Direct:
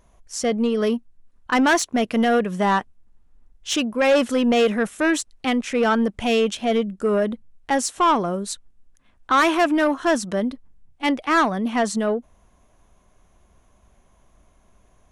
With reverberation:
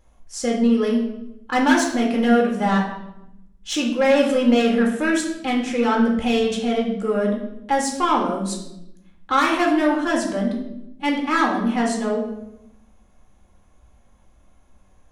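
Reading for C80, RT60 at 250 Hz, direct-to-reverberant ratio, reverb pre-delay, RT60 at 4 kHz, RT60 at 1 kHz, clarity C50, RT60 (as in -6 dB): 8.5 dB, 1.3 s, -1.5 dB, 4 ms, 0.65 s, 0.80 s, 6.0 dB, 0.85 s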